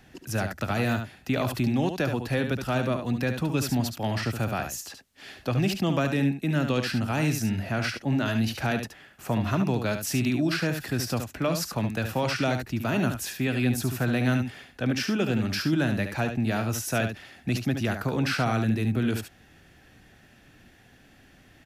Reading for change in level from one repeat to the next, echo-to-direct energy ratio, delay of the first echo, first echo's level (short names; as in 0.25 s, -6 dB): no steady repeat, -7.5 dB, 72 ms, -7.5 dB